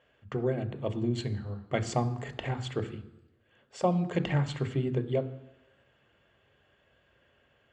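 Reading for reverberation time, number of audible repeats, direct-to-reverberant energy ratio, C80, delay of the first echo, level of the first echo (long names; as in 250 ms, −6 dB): 0.90 s, no echo audible, 9.5 dB, 17.0 dB, no echo audible, no echo audible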